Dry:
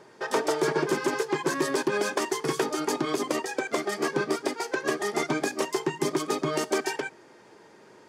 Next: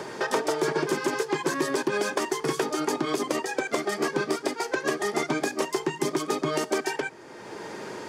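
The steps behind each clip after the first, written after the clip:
multiband upward and downward compressor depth 70%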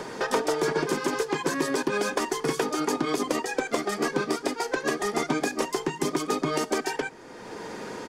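low-shelf EQ 75 Hz +11.5 dB
comb filter 4.1 ms, depth 31%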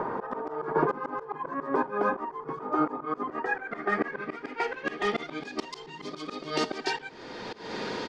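volume swells 234 ms
low-pass filter sweep 1,100 Hz → 4,100 Hz, 0:02.93–0:05.71
echo ahead of the sound 136 ms −20.5 dB
level +2.5 dB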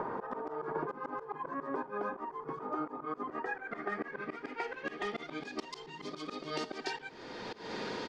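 downward compressor 4 to 1, threshold −30 dBFS, peak gain reduction 9.5 dB
level −4 dB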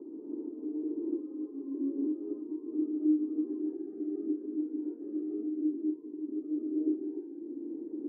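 in parallel at −11 dB: decimation without filtering 22×
on the sum: flat-topped band-pass 310 Hz, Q 4.8
reverb whose tail is shaped and stops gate 340 ms rising, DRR −6.5 dB
level +4.5 dB

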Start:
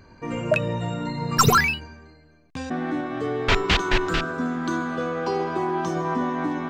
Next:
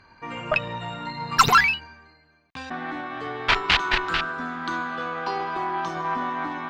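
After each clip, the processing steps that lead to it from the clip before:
harmonic generator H 2 −6 dB, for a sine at −4.5 dBFS
flat-topped bell 1,900 Hz +11 dB 3 octaves
level −9 dB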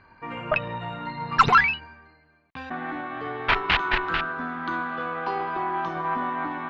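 low-pass filter 2,700 Hz 12 dB per octave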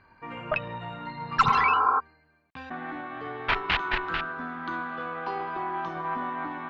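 healed spectral selection 0:01.48–0:01.97, 240–1,700 Hz before
level −4 dB

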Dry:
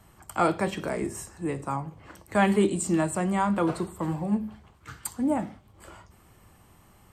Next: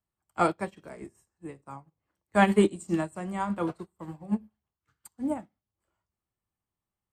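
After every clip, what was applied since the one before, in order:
expander for the loud parts 2.5 to 1, over −43 dBFS
level +3 dB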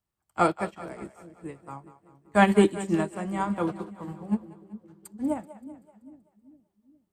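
echo with a time of its own for lows and highs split 410 Hz, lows 409 ms, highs 191 ms, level −14.5 dB
level +2 dB

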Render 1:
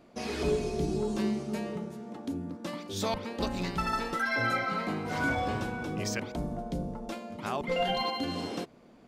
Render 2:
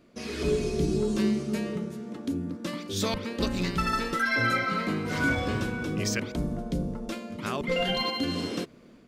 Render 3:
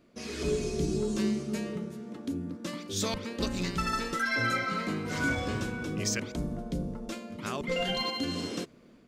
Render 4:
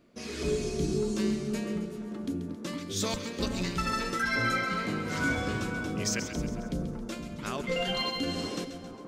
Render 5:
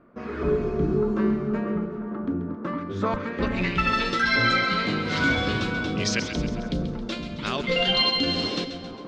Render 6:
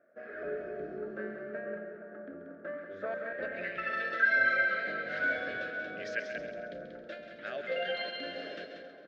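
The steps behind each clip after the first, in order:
parametric band 790 Hz −11 dB 0.65 octaves; automatic gain control gain up to 5 dB
dynamic equaliser 6,900 Hz, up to +6 dB, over −52 dBFS, Q 1.5; level −3.5 dB
echo with a time of its own for lows and highs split 1,400 Hz, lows 470 ms, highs 135 ms, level −10 dB
low-pass filter sweep 1,300 Hz → 3,900 Hz, 0:03.10–0:04.14; level +5.5 dB
pair of resonant band-passes 1,000 Hz, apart 1.4 octaves; single-tap delay 185 ms −7 dB

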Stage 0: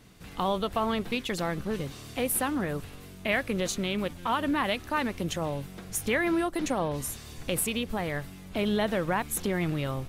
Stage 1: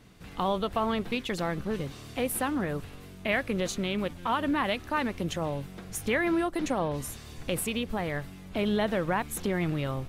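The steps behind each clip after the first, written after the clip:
high-shelf EQ 5,100 Hz −5.5 dB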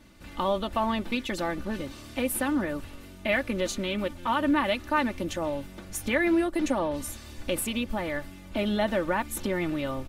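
comb filter 3.4 ms, depth 64%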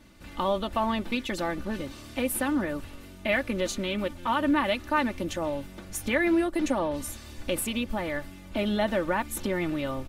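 no processing that can be heard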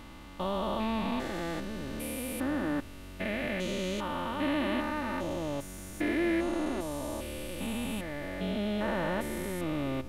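spectrum averaged block by block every 400 ms

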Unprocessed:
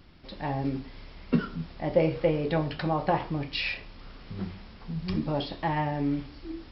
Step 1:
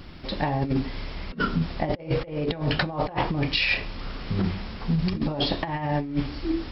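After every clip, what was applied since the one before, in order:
compressor whose output falls as the input rises −32 dBFS, ratio −0.5
level +7.5 dB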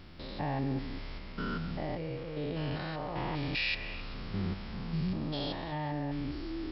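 spectrum averaged block by block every 200 ms
echo through a band-pass that steps 130 ms, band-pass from 1,500 Hz, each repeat 0.7 octaves, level −11.5 dB
level −6.5 dB

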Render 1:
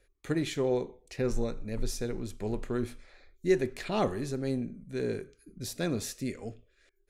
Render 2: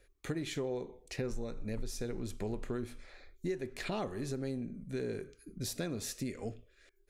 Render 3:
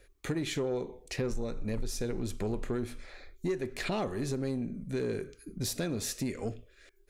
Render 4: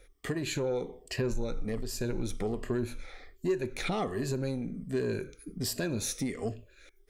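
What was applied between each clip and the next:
downward compressor 6 to 1, threshold −36 dBFS, peak gain reduction 15.5 dB; level +2 dB
soft clipping −28.5 dBFS, distortion −21 dB; level +5.5 dB
rippled gain that drifts along the octave scale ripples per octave 1.4, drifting −1.3 Hz, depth 10 dB

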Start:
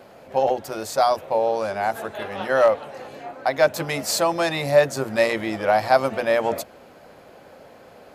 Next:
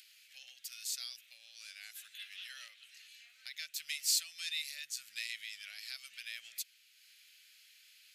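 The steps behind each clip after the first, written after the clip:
downward compressor 2 to 1, threshold −23 dBFS, peak gain reduction 7.5 dB
inverse Chebyshev high-pass filter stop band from 1,000 Hz, stop band 50 dB
upward compression, threshold −51 dBFS
level −4 dB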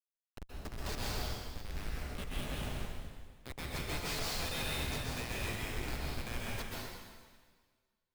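running median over 5 samples
comparator with hysteresis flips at −43 dBFS
dense smooth reverb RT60 1.6 s, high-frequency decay 1×, pre-delay 115 ms, DRR −5 dB
level +6 dB

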